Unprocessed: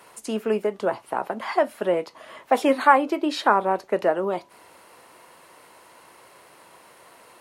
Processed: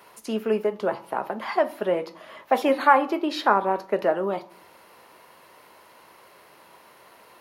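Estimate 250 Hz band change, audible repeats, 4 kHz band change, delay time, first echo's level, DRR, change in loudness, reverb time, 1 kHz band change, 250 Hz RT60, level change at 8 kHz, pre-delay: −1.5 dB, no echo audible, −1.0 dB, no echo audible, no echo audible, 11.0 dB, −1.0 dB, 0.55 s, −1.0 dB, 0.80 s, can't be measured, 5 ms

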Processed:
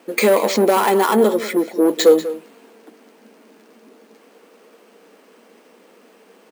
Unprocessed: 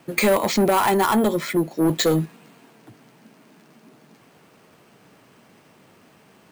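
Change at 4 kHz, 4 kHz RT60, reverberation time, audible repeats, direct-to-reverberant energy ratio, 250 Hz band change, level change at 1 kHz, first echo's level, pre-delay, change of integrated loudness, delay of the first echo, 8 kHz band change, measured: +1.5 dB, no reverb audible, no reverb audible, 1, no reverb audible, +1.5 dB, +2.0 dB, −14.5 dB, no reverb audible, +4.0 dB, 192 ms, +1.5 dB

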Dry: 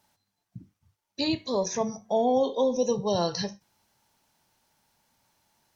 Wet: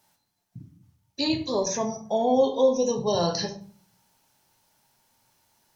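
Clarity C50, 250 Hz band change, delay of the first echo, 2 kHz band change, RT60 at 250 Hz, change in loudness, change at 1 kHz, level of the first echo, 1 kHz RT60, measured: 12.0 dB, +2.0 dB, no echo audible, +2.0 dB, 0.70 s, +2.5 dB, +1.5 dB, no echo audible, 0.50 s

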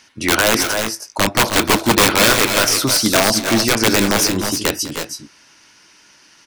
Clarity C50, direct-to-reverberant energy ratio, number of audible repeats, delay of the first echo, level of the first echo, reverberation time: no reverb audible, no reverb audible, 2, 201 ms, −17.0 dB, no reverb audible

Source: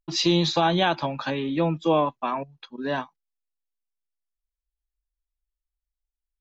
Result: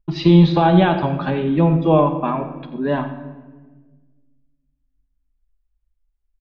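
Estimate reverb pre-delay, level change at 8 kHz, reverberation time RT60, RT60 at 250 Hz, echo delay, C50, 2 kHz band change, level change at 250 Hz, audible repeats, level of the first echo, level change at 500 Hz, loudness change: 5 ms, can't be measured, 1.4 s, 2.0 s, 88 ms, 9.0 dB, +2.0 dB, +10.0 dB, 1, −14.0 dB, +6.5 dB, +8.0 dB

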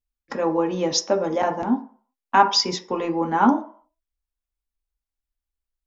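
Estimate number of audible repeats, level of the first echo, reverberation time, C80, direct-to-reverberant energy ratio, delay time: no echo audible, no echo audible, 0.45 s, 16.5 dB, 3.0 dB, no echo audible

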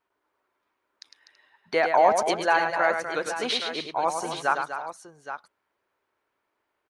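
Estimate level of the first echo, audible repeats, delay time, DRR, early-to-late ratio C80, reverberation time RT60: −6.5 dB, 4, 105 ms, no reverb audible, no reverb audible, no reverb audible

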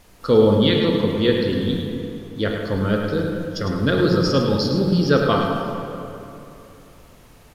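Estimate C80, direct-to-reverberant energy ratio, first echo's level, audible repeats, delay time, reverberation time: 1.5 dB, −0.5 dB, −7.5 dB, 1, 105 ms, 3.0 s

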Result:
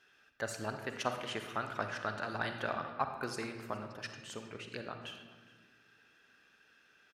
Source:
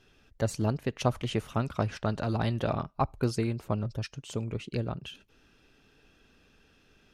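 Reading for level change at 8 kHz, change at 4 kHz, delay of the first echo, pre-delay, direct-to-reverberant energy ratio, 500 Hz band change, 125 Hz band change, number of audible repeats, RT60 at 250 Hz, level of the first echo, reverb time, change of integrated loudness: −4.0 dB, −3.0 dB, 414 ms, 35 ms, 6.0 dB, −7.5 dB, −17.5 dB, 1, 2.2 s, −22.5 dB, 1.5 s, −7.5 dB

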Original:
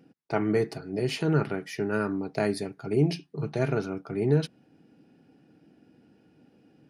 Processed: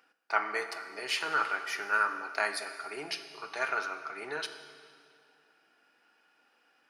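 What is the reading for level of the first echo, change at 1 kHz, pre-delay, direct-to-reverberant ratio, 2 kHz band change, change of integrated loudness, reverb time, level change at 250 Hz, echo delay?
no echo audible, +5.0 dB, 13 ms, 8.0 dB, +7.0 dB, −4.5 dB, 2.2 s, −22.0 dB, no echo audible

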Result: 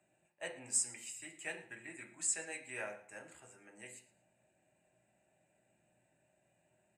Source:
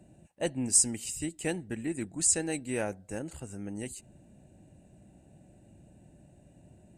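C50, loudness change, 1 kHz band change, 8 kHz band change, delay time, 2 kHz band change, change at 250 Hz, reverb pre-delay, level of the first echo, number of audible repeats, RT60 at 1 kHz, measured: 10.0 dB, −9.0 dB, −9.0 dB, −10.0 dB, 114 ms, −3.0 dB, −22.0 dB, 3 ms, −18.5 dB, 2, 0.50 s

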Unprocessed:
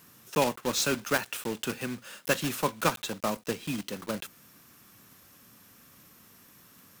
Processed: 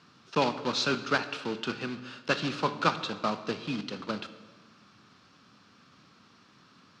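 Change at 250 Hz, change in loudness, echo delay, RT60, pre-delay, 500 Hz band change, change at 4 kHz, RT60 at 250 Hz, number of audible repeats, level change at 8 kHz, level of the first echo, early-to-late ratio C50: 0.0 dB, −0.5 dB, no echo audible, 1.4 s, 17 ms, −1.0 dB, +1.5 dB, 1.6 s, no echo audible, −11.5 dB, no echo audible, 12.5 dB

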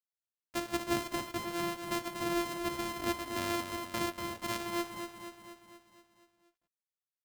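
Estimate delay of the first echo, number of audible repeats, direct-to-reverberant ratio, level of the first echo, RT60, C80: 239 ms, 6, no reverb audible, −7.5 dB, no reverb audible, no reverb audible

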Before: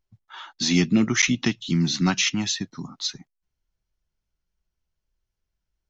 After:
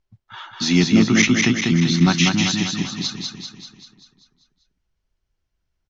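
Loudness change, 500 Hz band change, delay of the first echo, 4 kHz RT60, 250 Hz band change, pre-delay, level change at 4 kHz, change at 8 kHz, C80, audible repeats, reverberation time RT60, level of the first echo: +5.0 dB, +6.0 dB, 195 ms, no reverb audible, +6.0 dB, no reverb audible, +4.0 dB, can't be measured, no reverb audible, 7, no reverb audible, −3.5 dB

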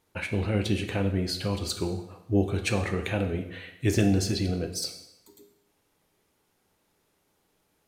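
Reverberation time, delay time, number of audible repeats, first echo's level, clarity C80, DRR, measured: 0.85 s, no echo audible, no echo audible, no echo audible, 12.0 dB, 5.0 dB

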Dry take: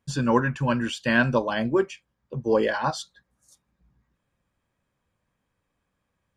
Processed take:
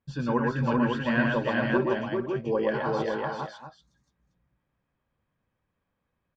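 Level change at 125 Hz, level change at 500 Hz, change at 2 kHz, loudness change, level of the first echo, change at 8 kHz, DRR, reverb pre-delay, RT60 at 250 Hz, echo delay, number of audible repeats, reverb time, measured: −2.0 dB, −1.5 dB, −3.0 dB, −3.0 dB, −3.5 dB, below −15 dB, no reverb audible, no reverb audible, no reverb audible, 116 ms, 5, no reverb audible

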